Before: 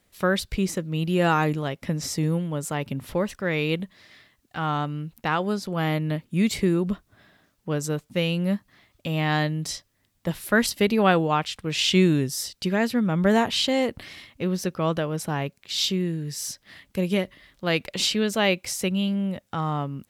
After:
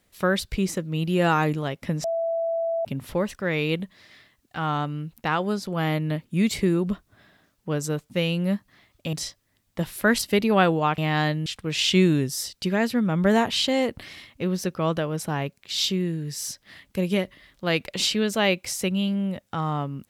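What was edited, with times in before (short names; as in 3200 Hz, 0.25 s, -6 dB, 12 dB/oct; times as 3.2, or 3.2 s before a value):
2.04–2.85 bleep 664 Hz -22.5 dBFS
9.13–9.61 move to 11.46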